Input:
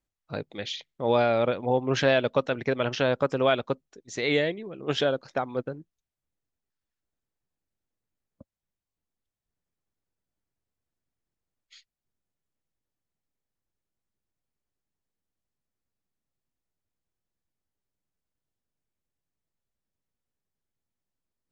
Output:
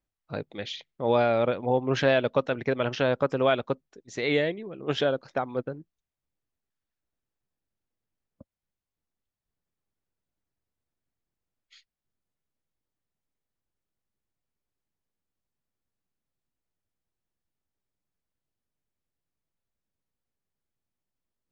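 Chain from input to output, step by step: high shelf 5400 Hz -8.5 dB

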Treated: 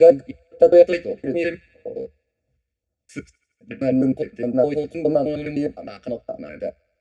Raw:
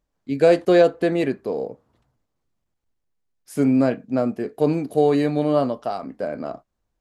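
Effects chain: slices in reverse order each 0.103 s, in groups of 5; air absorption 130 m; notch comb 990 Hz; phaser stages 2, 1.8 Hz, lowest notch 670–2300 Hz; graphic EQ 125/250/500/1000/2000/4000/8000 Hz -6/-7/+7/-11/+8/-7/+11 dB; thin delay 82 ms, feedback 66%, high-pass 1400 Hz, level -24 dB; reverb RT60 0.10 s, pre-delay 3 ms, DRR 9 dB; gain -1.5 dB

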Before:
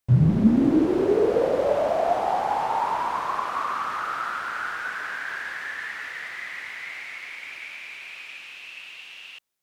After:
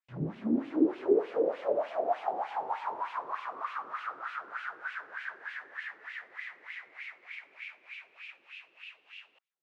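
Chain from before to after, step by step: dynamic EQ 270 Hz, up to +5 dB, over -33 dBFS, Q 1.6; LFO band-pass sine 3.3 Hz 360–2800 Hz; gain -3 dB

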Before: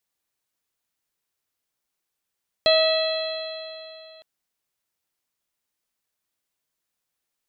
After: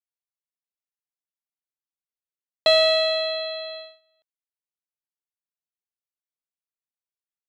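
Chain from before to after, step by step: in parallel at -7.5 dB: soft clip -20 dBFS, distortion -10 dB; on the sum: gate -36 dBFS, range -25 dB

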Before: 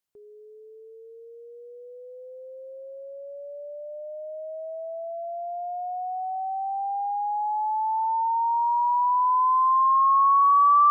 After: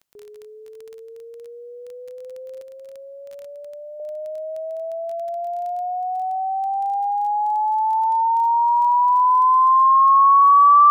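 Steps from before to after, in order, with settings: 2.61–4 HPF 810 Hz 6 dB/oct; crackle 16/s -37 dBFS; gain +6 dB

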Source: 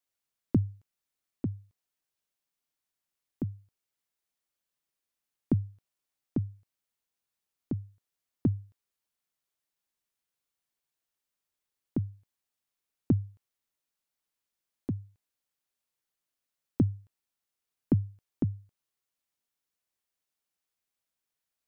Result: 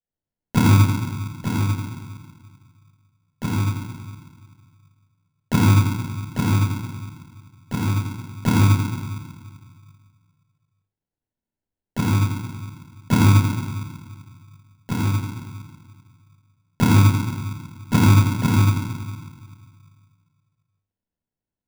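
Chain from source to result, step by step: low-pass opened by the level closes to 440 Hz, open at -31.5 dBFS; shoebox room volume 850 m³, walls mixed, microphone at 6.5 m; sample-rate reducer 1200 Hz, jitter 0%; gain -2 dB

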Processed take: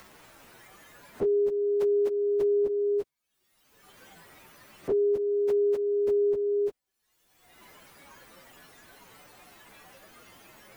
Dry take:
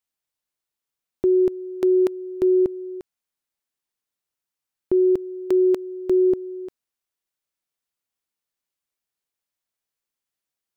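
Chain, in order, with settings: inharmonic rescaling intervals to 126%; spectral noise reduction 7 dB; in parallel at -1 dB: upward compressor, threshold -22 dBFS; on the sum: limiter -18.5 dBFS, peak gain reduction 11 dB; three-band squash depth 40%; gain -1 dB

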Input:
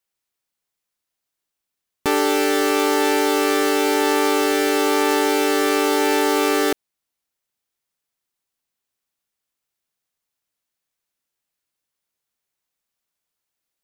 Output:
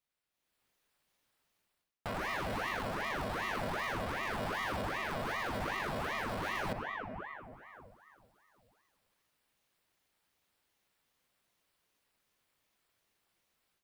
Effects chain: HPF 130 Hz; on a send at -22 dB: low shelf 490 Hz +7 dB + reverb RT60 2.2 s, pre-delay 5 ms; on the sum: AGC gain up to 12 dB; limiter -11 dBFS, peak gain reduction 9.5 dB; high shelf 4500 Hz -9 dB; notch 6300 Hz, Q 5.1; reverse; compressor 4:1, threshold -34 dBFS, peak gain reduction 13.5 dB; reverse; ring modulator with a swept carrier 870 Hz, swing 80%, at 2.6 Hz

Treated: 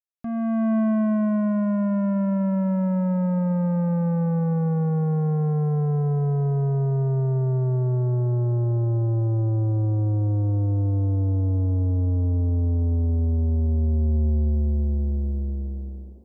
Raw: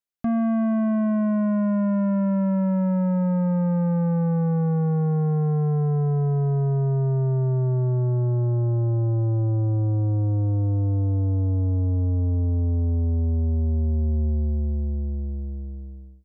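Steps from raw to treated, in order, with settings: opening faded in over 0.76 s; short-mantissa float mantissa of 8-bit; vocal rider within 4 dB 2 s; on a send: band-limited delay 0.504 s, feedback 79%, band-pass 530 Hz, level -21 dB

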